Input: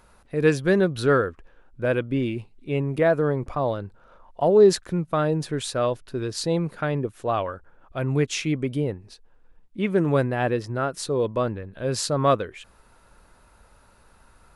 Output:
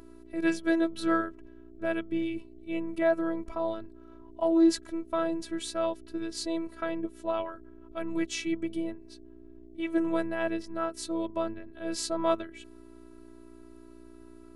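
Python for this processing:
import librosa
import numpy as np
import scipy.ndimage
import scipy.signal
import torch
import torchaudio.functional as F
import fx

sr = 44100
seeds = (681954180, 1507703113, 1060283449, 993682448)

y = fx.dmg_buzz(x, sr, base_hz=60.0, harmonics=8, level_db=-44.0, tilt_db=-1, odd_only=False)
y = fx.robotise(y, sr, hz=329.0)
y = F.gain(torch.from_numpy(y), -4.0).numpy()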